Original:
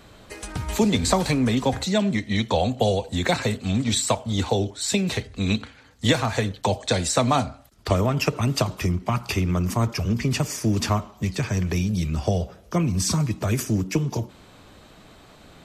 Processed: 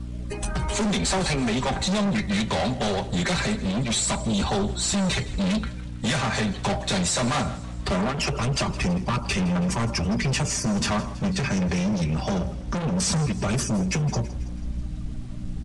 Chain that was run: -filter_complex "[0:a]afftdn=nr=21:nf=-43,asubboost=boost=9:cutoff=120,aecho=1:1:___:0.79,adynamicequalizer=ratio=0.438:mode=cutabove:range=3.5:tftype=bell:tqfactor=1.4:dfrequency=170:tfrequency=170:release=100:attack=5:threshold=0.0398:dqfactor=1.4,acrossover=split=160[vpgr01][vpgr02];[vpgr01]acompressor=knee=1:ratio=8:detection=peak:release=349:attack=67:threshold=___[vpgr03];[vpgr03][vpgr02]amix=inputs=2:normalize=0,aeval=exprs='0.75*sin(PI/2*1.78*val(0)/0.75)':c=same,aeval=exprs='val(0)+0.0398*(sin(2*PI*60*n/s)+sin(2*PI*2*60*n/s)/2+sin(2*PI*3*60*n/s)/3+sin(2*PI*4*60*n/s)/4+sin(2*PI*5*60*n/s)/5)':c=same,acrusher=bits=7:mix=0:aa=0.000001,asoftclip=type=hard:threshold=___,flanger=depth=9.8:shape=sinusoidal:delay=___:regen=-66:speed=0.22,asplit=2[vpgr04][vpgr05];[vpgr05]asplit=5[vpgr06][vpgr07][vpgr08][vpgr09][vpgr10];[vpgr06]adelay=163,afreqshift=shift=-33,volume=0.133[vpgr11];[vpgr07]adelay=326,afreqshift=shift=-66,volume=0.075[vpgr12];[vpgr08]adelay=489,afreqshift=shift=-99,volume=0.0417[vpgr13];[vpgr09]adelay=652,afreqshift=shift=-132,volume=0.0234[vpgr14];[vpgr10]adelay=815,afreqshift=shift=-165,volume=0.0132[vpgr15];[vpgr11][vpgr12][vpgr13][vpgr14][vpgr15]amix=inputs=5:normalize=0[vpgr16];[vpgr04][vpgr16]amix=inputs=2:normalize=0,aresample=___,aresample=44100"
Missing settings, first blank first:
5.1, 0.02, 0.126, 0.2, 22050